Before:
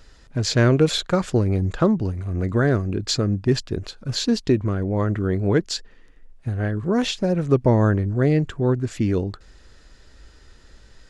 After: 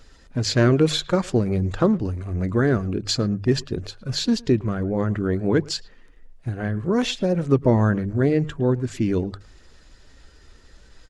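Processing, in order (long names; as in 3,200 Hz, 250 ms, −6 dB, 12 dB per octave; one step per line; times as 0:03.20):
spectral magnitudes quantised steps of 15 dB
mains-hum notches 50/100/150 Hz
far-end echo of a speakerphone 110 ms, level −21 dB
every ending faded ahead of time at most 580 dB per second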